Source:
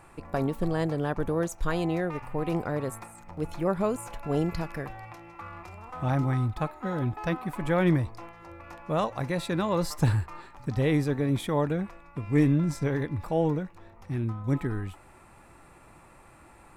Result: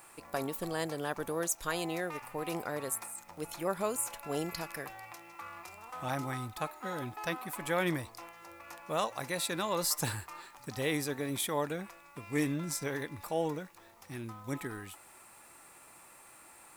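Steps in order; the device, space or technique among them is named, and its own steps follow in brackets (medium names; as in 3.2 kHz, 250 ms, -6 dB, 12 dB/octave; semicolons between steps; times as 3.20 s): turntable without a phono preamp (RIAA curve recording; white noise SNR 32 dB); trim -3.5 dB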